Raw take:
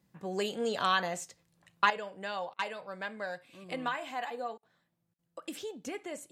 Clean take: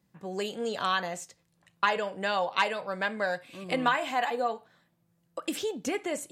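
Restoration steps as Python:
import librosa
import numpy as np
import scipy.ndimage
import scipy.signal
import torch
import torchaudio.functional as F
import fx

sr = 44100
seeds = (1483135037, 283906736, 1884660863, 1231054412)

y = fx.fix_interpolate(x, sr, at_s=(2.54, 4.58, 5.14), length_ms=48.0)
y = fx.gain(y, sr, db=fx.steps((0.0, 0.0), (1.9, 8.5)))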